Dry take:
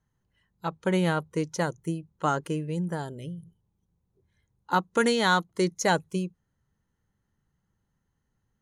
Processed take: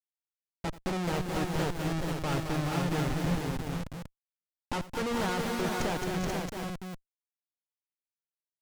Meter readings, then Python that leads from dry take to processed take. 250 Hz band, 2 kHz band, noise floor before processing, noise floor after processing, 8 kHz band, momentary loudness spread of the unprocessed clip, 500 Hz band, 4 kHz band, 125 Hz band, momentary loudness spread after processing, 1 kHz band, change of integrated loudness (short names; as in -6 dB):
-2.5 dB, -6.0 dB, -78 dBFS, under -85 dBFS, -3.5 dB, 13 LU, -5.0 dB, -4.0 dB, 0.0 dB, 10 LU, -5.5 dB, -4.5 dB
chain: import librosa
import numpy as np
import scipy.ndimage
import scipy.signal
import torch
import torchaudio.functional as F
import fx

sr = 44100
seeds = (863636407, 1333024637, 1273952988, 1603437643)

y = fx.wiener(x, sr, points=15)
y = fx.high_shelf(y, sr, hz=2800.0, db=-12.0)
y = fx.schmitt(y, sr, flips_db=-35.5)
y = fx.echo_multitap(y, sr, ms=(85, 219, 397, 427, 485, 674), db=(-17.5, -6.5, -12.0, -5.0, -5.0, -8.0))
y = fx.slew_limit(y, sr, full_power_hz=150.0)